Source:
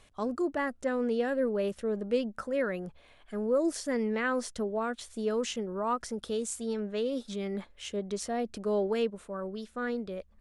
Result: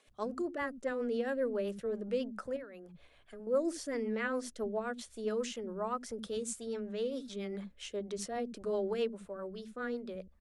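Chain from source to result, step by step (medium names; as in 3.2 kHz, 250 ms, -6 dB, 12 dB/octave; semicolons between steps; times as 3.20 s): rotary cabinet horn 7.5 Hz; 2.56–3.47 s: compression 12:1, threshold -41 dBFS, peak gain reduction 15 dB; bands offset in time highs, lows 70 ms, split 230 Hz; trim -2 dB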